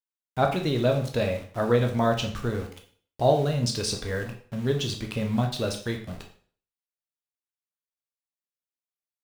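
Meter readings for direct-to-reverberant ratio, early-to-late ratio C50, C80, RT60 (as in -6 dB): 2.5 dB, 9.0 dB, 13.5 dB, 0.45 s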